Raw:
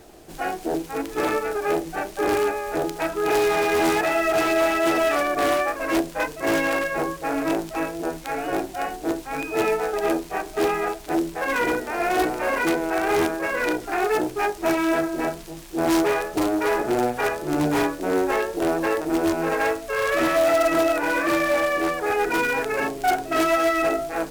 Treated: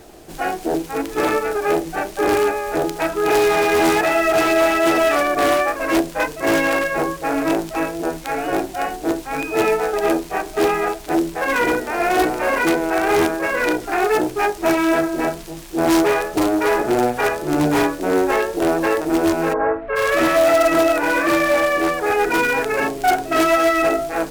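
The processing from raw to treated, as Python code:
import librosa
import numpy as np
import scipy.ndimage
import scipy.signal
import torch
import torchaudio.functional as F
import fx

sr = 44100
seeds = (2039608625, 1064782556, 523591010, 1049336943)

y = fx.lowpass(x, sr, hz=fx.line((19.52, 1100.0), (19.95, 2500.0)), slope=24, at=(19.52, 19.95), fade=0.02)
y = y * librosa.db_to_amplitude(4.5)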